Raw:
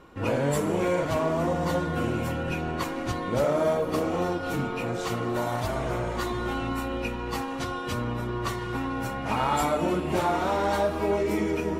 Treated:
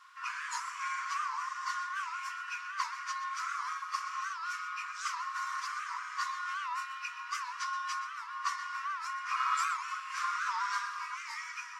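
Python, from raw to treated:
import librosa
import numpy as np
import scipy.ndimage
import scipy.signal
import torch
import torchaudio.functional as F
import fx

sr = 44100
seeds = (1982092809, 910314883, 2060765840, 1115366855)

p1 = fx.high_shelf_res(x, sr, hz=4400.0, db=6.0, q=3.0)
p2 = fx.quant_dither(p1, sr, seeds[0], bits=8, dither='triangular')
p3 = p1 + (p2 * 10.0 ** (-6.5 / 20.0))
p4 = fx.brickwall_highpass(p3, sr, low_hz=980.0)
p5 = fx.spacing_loss(p4, sr, db_at_10k=23)
p6 = p5 + 10.0 ** (-13.0 / 20.0) * np.pad(p5, (int(125 * sr / 1000.0), 0))[:len(p5)]
y = fx.record_warp(p6, sr, rpm=78.0, depth_cents=160.0)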